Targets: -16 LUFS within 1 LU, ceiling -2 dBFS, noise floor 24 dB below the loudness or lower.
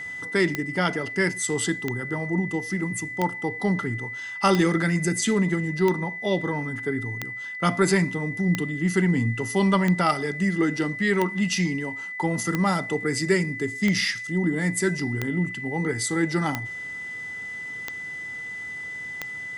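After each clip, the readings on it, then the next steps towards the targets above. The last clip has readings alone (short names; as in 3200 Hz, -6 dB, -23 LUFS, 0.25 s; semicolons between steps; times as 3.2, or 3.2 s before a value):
clicks 15; steady tone 2000 Hz; tone level -32 dBFS; loudness -25.0 LUFS; peak -6.0 dBFS; loudness target -16.0 LUFS
-> de-click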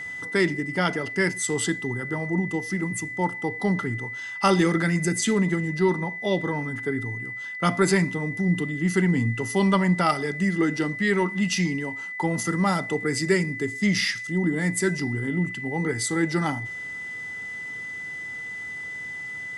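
clicks 0; steady tone 2000 Hz; tone level -32 dBFS
-> notch 2000 Hz, Q 30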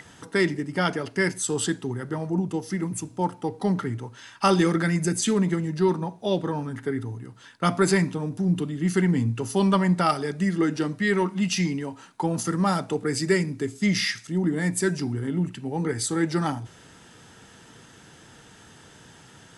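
steady tone none; loudness -25.5 LUFS; peak -7.5 dBFS; loudness target -16.0 LUFS
-> gain +9.5 dB; limiter -2 dBFS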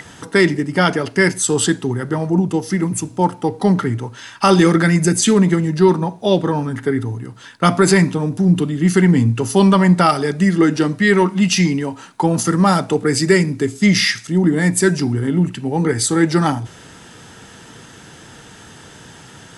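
loudness -16.0 LUFS; peak -2.0 dBFS; noise floor -41 dBFS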